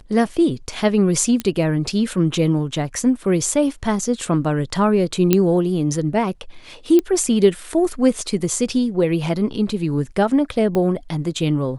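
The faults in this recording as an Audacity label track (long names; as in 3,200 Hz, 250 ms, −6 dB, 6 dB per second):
1.400000	1.400000	click −9 dBFS
5.330000	5.330000	click −1 dBFS
6.990000	6.990000	click −7 dBFS
10.750000	10.750000	click −11 dBFS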